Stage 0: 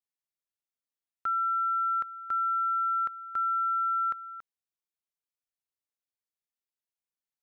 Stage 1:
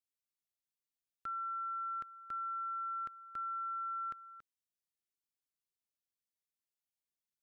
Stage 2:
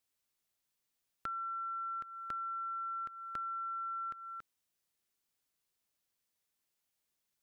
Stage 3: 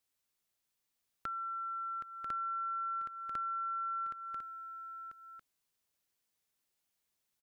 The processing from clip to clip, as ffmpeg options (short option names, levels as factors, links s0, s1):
-af "equalizer=f=980:t=o:w=1.7:g=-12.5,volume=0.794"
-af "acompressor=threshold=0.00398:ratio=6,volume=2.82"
-af "aecho=1:1:991:0.447"